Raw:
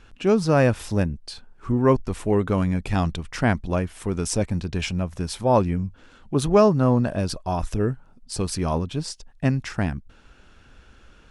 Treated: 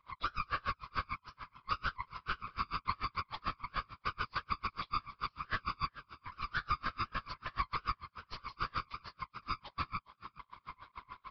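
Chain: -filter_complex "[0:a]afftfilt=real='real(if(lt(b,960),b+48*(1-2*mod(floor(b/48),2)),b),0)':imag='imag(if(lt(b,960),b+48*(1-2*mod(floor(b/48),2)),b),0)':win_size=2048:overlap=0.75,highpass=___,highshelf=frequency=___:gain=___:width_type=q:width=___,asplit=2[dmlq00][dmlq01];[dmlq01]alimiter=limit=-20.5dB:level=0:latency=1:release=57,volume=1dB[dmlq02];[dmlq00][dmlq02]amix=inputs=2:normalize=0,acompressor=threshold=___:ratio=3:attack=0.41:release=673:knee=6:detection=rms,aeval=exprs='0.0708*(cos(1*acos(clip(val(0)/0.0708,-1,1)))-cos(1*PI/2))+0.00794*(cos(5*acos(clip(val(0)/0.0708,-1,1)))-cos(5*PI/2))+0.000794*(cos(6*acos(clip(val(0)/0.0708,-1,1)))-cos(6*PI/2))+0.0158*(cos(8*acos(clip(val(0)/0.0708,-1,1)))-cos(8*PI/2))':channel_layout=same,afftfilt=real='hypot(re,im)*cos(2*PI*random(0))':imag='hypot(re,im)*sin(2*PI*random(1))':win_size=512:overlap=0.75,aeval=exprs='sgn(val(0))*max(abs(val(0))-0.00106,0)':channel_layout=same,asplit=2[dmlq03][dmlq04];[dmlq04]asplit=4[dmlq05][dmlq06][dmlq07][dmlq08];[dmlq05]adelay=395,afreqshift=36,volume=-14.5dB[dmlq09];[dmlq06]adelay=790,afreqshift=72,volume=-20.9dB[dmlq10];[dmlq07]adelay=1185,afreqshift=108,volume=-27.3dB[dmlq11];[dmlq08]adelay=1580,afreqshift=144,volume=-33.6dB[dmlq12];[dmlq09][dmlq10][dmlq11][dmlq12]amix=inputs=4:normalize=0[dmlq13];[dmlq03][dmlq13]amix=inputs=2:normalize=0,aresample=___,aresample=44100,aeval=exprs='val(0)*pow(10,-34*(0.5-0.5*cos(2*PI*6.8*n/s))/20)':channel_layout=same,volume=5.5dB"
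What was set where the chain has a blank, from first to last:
1200, 1600, -8.5, 1.5, -32dB, 11025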